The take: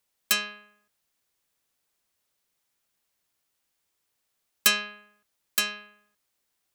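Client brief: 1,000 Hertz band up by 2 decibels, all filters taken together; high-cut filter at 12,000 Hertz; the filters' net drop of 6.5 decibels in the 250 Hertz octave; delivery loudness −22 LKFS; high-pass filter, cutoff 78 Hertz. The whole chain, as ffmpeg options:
ffmpeg -i in.wav -af "highpass=78,lowpass=12000,equalizer=frequency=250:width_type=o:gain=-8.5,equalizer=frequency=1000:width_type=o:gain=3,volume=5dB" out.wav

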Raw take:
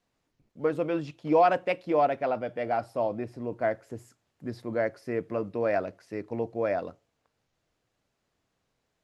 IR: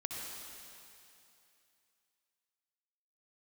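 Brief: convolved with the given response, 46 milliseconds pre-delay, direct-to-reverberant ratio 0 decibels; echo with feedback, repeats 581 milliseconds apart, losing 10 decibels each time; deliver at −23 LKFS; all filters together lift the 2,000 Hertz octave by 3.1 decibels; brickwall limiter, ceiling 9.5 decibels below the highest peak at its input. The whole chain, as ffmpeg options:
-filter_complex "[0:a]equalizer=frequency=2000:width_type=o:gain=4,alimiter=limit=-21dB:level=0:latency=1,aecho=1:1:581|1162|1743|2324:0.316|0.101|0.0324|0.0104,asplit=2[link_01][link_02];[1:a]atrim=start_sample=2205,adelay=46[link_03];[link_02][link_03]afir=irnorm=-1:irlink=0,volume=-1dB[link_04];[link_01][link_04]amix=inputs=2:normalize=0,volume=7dB"

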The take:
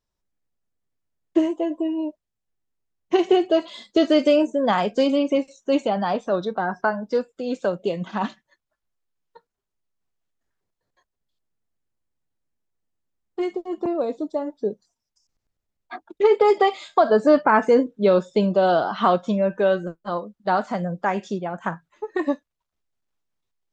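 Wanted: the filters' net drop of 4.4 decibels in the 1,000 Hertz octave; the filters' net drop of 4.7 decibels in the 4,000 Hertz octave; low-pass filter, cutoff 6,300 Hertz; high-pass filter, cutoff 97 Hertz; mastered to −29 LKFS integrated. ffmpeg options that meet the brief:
ffmpeg -i in.wav -af "highpass=97,lowpass=6300,equalizer=frequency=1000:width_type=o:gain=-6,equalizer=frequency=4000:width_type=o:gain=-6,volume=-5.5dB" out.wav

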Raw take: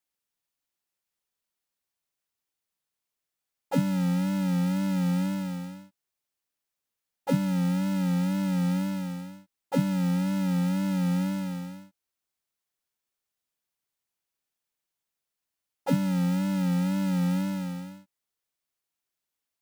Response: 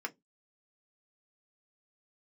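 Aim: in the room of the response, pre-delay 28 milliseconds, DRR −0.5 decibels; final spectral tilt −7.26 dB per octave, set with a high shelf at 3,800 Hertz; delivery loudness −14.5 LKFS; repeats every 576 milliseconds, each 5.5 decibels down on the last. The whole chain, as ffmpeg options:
-filter_complex "[0:a]highshelf=frequency=3800:gain=7.5,aecho=1:1:576|1152|1728|2304|2880|3456|4032:0.531|0.281|0.149|0.079|0.0419|0.0222|0.0118,asplit=2[link_01][link_02];[1:a]atrim=start_sample=2205,adelay=28[link_03];[link_02][link_03]afir=irnorm=-1:irlink=0,volume=-1.5dB[link_04];[link_01][link_04]amix=inputs=2:normalize=0,volume=10.5dB"

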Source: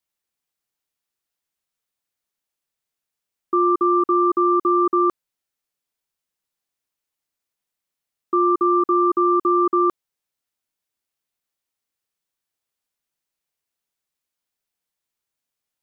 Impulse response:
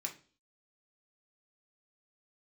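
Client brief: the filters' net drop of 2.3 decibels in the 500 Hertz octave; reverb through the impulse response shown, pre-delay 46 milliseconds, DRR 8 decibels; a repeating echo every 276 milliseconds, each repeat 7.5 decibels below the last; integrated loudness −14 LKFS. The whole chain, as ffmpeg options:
-filter_complex "[0:a]equalizer=frequency=500:width_type=o:gain=-4.5,aecho=1:1:276|552|828|1104|1380:0.422|0.177|0.0744|0.0312|0.0131,asplit=2[link_01][link_02];[1:a]atrim=start_sample=2205,adelay=46[link_03];[link_02][link_03]afir=irnorm=-1:irlink=0,volume=-7.5dB[link_04];[link_01][link_04]amix=inputs=2:normalize=0,volume=8.5dB"

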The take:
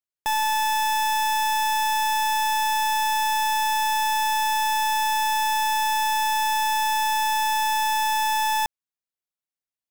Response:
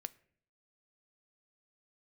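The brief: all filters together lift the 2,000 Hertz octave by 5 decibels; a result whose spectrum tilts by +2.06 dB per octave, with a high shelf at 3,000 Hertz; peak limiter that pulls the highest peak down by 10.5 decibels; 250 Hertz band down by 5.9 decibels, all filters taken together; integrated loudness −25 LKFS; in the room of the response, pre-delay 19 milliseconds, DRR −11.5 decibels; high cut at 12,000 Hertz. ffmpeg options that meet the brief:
-filter_complex "[0:a]lowpass=12000,equalizer=frequency=250:width_type=o:gain=-7,equalizer=frequency=2000:width_type=o:gain=3,highshelf=frequency=3000:gain=9,alimiter=limit=-22dB:level=0:latency=1,asplit=2[link_01][link_02];[1:a]atrim=start_sample=2205,adelay=19[link_03];[link_02][link_03]afir=irnorm=-1:irlink=0,volume=15dB[link_04];[link_01][link_04]amix=inputs=2:normalize=0,volume=-7.5dB"

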